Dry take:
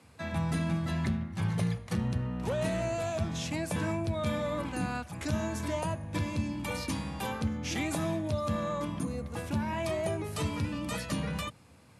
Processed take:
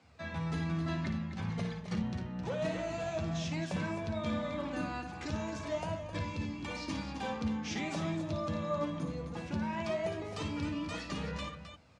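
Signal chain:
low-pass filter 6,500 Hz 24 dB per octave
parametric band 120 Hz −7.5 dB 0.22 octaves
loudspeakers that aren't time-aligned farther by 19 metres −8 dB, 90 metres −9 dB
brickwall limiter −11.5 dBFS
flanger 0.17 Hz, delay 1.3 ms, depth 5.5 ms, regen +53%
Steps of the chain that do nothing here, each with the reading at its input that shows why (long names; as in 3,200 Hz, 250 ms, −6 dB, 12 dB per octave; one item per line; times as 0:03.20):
brickwall limiter −11.5 dBFS: peak of its input −18.5 dBFS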